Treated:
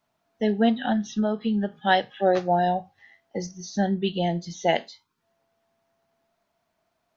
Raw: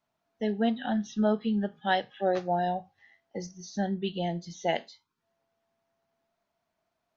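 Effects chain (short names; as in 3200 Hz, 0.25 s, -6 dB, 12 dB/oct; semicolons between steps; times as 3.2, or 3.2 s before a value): 0.92–1.82 compressor 5:1, threshold -27 dBFS, peak gain reduction 7 dB; gain +6 dB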